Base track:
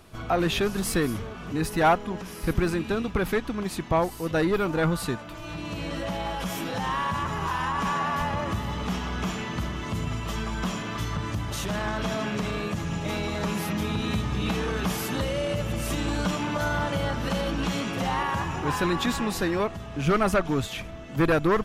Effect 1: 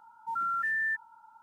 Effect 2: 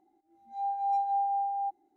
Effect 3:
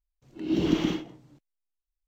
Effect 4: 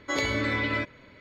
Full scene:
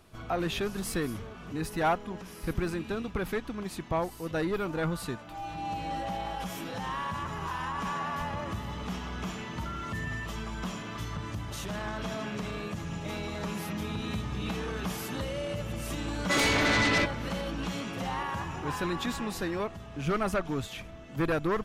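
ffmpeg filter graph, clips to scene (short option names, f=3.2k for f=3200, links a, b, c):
-filter_complex "[0:a]volume=-6.5dB[a];[4:a]aeval=exprs='0.188*sin(PI/2*3.55*val(0)/0.188)':c=same[b];[2:a]atrim=end=1.96,asetpts=PTS-STARTPTS,volume=-8dB,afade=t=in:d=0.004:c=hsin,afade=t=out:st=1.956:d=0.004:c=hsin,adelay=4760[c];[1:a]atrim=end=1.42,asetpts=PTS-STARTPTS,volume=-10.5dB,afade=t=in:d=0.004:c=hsin,afade=t=out:st=1.416:d=0.004:c=hsin,adelay=410130S[d];[b]atrim=end=1.2,asetpts=PTS-STARTPTS,volume=-7.5dB,afade=t=in:d=0.004:c=hsin,afade=t=out:st=1.196:d=0.004:c=hsin,adelay=16210[e];[a][c][d][e]amix=inputs=4:normalize=0"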